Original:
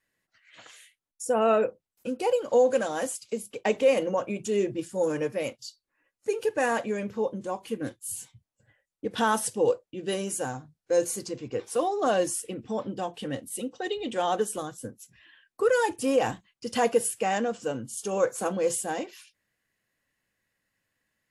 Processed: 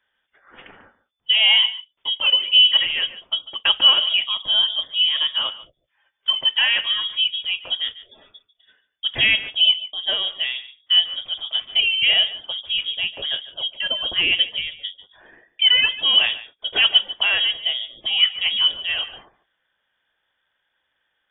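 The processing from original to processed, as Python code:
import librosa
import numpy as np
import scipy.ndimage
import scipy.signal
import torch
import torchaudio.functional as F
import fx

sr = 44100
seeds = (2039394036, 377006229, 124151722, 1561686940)

y = x + 10.0 ** (-16.0 / 20.0) * np.pad(x, (int(145 * sr / 1000.0), 0))[:len(x)]
y = fx.freq_invert(y, sr, carrier_hz=3500)
y = y * 10.0 ** (7.0 / 20.0)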